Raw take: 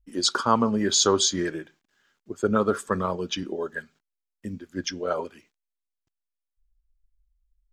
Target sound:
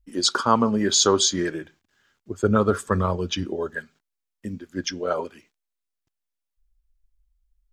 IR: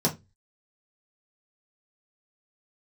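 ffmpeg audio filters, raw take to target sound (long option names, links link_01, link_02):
-filter_complex "[0:a]asettb=1/sr,asplit=3[link_01][link_02][link_03];[link_01]atrim=end=1.614[link_04];[link_02]atrim=start=1.61:end=3.75,asetpts=PTS-STARTPTS,afade=type=in:duration=0.004:curve=qsin,afade=type=out:start_time=2.136:duration=0.004:curve=qsin,equalizer=frequency=85:width_type=o:width=0.95:gain=12[link_05];[link_03]atrim=start=3.746[link_06];[link_04][link_05]acrossfade=duration=0.004:curve1=hsin:curve2=qsin[link_07];[link_07][link_06]acrossfade=duration=0.004:curve1=qsin:curve2=hsin,volume=2dB"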